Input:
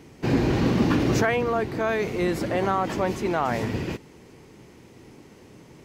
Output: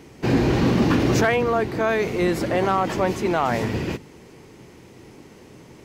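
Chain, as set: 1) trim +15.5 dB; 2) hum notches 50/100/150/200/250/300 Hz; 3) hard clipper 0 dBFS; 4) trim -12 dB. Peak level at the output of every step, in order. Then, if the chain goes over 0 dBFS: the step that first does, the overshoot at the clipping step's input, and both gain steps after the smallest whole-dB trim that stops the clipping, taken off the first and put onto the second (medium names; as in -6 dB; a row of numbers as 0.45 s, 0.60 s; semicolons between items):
+5.5 dBFS, +5.0 dBFS, 0.0 dBFS, -12.0 dBFS; step 1, 5.0 dB; step 1 +10.5 dB, step 4 -7 dB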